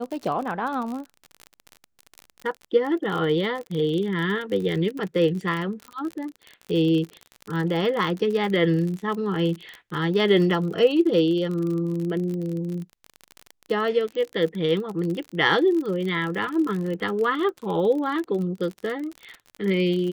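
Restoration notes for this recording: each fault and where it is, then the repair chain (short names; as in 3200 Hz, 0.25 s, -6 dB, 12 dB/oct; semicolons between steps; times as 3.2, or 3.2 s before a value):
crackle 43/s -29 dBFS
5.88 pop -27 dBFS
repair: de-click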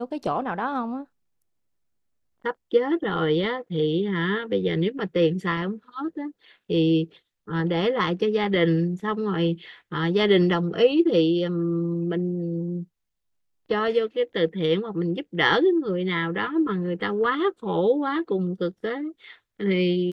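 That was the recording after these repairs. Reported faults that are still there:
none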